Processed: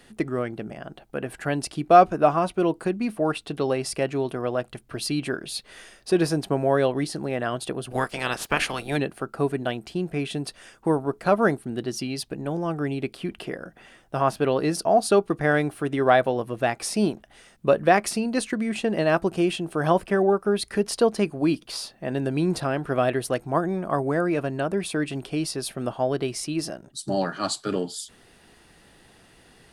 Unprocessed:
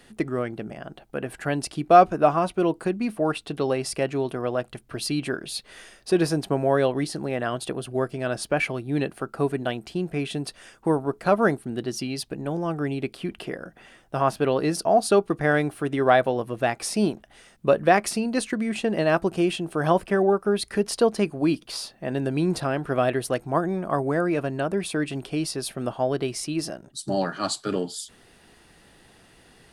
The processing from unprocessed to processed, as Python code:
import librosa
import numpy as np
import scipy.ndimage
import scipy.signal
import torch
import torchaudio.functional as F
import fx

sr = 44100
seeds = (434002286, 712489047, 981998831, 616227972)

y = fx.spec_clip(x, sr, under_db=23, at=(7.9, 8.96), fade=0.02)